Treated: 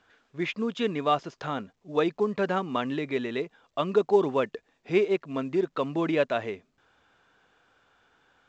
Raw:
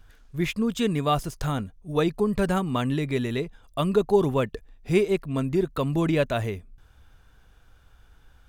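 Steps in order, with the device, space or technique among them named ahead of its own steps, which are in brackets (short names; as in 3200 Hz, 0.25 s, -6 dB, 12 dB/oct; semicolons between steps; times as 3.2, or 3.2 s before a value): telephone (BPF 290–3500 Hz; µ-law 128 kbps 16000 Hz)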